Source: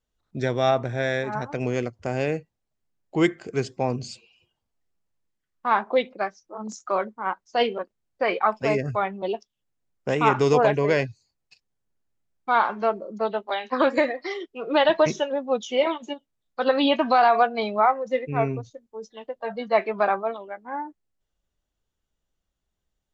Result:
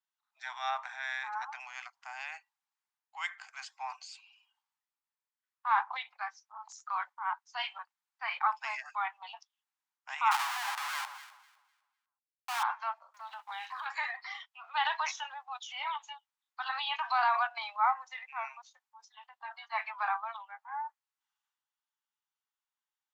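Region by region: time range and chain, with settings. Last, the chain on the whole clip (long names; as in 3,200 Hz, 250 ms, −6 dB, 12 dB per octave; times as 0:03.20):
0:10.31–0:12.63: comb filter 3.8 ms, depth 77% + comparator with hysteresis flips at −28 dBFS + delay that swaps between a low-pass and a high-pass 126 ms, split 1,300 Hz, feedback 53%, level −13 dB
0:13.14–0:13.86: mu-law and A-law mismatch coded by mu + downward compressor 10 to 1, threshold −26 dBFS
whole clip: Butterworth high-pass 820 Hz 72 dB per octave; spectral tilt −2 dB per octave; transient designer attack −2 dB, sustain +6 dB; level −4.5 dB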